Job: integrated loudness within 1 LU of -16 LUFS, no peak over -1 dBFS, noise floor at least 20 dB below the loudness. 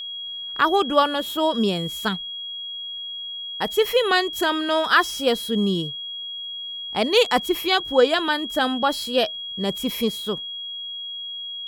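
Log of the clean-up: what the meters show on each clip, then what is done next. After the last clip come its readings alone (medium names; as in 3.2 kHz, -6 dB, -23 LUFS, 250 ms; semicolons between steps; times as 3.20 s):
steady tone 3.3 kHz; tone level -30 dBFS; loudness -22.5 LUFS; peak level -4.0 dBFS; loudness target -16.0 LUFS
-> band-stop 3.3 kHz, Q 30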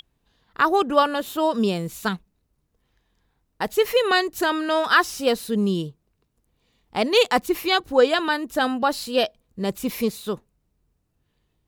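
steady tone not found; loudness -22.0 LUFS; peak level -4.0 dBFS; loudness target -16.0 LUFS
-> trim +6 dB; peak limiter -1 dBFS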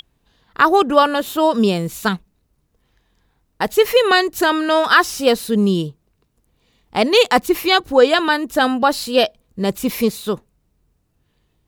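loudness -16.5 LUFS; peak level -1.0 dBFS; noise floor -66 dBFS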